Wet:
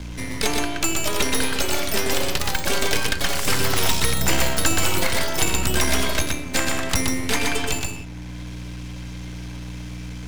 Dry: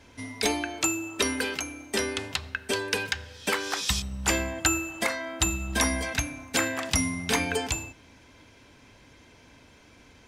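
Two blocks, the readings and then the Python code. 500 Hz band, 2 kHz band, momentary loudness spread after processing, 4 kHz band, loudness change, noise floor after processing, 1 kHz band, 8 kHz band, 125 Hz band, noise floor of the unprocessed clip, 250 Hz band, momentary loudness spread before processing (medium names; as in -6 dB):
+5.5 dB, +4.5 dB, 15 LU, +7.0 dB, +5.5 dB, -34 dBFS, +6.0 dB, +5.5 dB, +8.0 dB, -55 dBFS, +4.0 dB, 6 LU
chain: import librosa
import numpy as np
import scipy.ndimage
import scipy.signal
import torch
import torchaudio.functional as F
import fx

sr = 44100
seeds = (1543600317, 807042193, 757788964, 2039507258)

y = np.maximum(x, 0.0)
y = fx.add_hum(y, sr, base_hz=60, snr_db=13)
y = y + 10.0 ** (-3.5 / 20.0) * np.pad(y, (int(123 * sr / 1000.0), 0))[:len(y)]
y = fx.echo_pitch(y, sr, ms=751, semitones=6, count=3, db_per_echo=-3.0)
y = fx.band_squash(y, sr, depth_pct=40)
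y = y * 10.0 ** (6.5 / 20.0)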